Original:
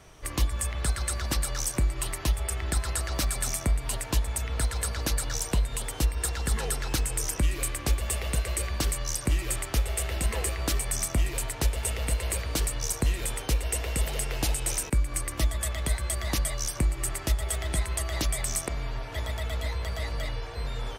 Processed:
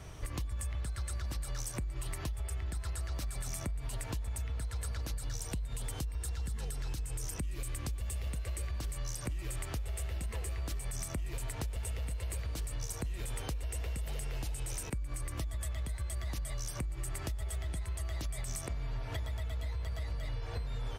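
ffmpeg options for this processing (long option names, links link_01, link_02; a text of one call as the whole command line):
ffmpeg -i in.wav -filter_complex "[0:a]asettb=1/sr,asplit=3[link_01][link_02][link_03];[link_01]atrim=end=5.144[link_04];[link_02]atrim=start=5.14:end=8.27,asetpts=PTS-STARTPTS,afade=type=in:duration=0.004:curve=qsin,afade=type=out:start_time=3.126:duration=0.004:curve=qsin,acrossover=split=320|3000[link_05][link_06][link_07];[link_06]acompressor=threshold=-42dB:ratio=2:attack=3.2:release=140:knee=2.83:detection=peak[link_08];[link_05][link_08][link_07]amix=inputs=3:normalize=0[link_09];[link_03]atrim=start=8.266[link_10];[link_04][link_09]acrossfade=duration=0.004:curve1=hsin:curve2=qsin[link_11];[link_11][link_10]acrossfade=duration=0.004:curve1=qsin:curve2=hsin,equalizer=frequency=81:width_type=o:width=2.2:gain=10,alimiter=limit=-23dB:level=0:latency=1:release=204,acompressor=threshold=-34dB:ratio=6" out.wav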